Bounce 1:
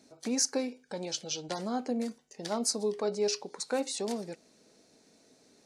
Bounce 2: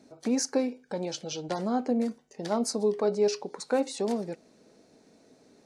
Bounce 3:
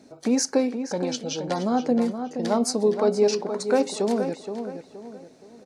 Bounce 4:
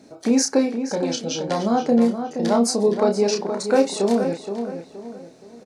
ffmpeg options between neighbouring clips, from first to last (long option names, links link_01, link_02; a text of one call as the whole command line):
ffmpeg -i in.wav -af "highshelf=frequency=2200:gain=-10,volume=5.5dB" out.wav
ffmpeg -i in.wav -filter_complex "[0:a]asplit=2[link_01][link_02];[link_02]adelay=472,lowpass=frequency=3000:poles=1,volume=-8dB,asplit=2[link_03][link_04];[link_04]adelay=472,lowpass=frequency=3000:poles=1,volume=0.37,asplit=2[link_05][link_06];[link_06]adelay=472,lowpass=frequency=3000:poles=1,volume=0.37,asplit=2[link_07][link_08];[link_08]adelay=472,lowpass=frequency=3000:poles=1,volume=0.37[link_09];[link_01][link_03][link_05][link_07][link_09]amix=inputs=5:normalize=0,volume=5dB" out.wav
ffmpeg -i in.wav -filter_complex "[0:a]asplit=2[link_01][link_02];[link_02]adelay=30,volume=-5dB[link_03];[link_01][link_03]amix=inputs=2:normalize=0,volume=2.5dB" out.wav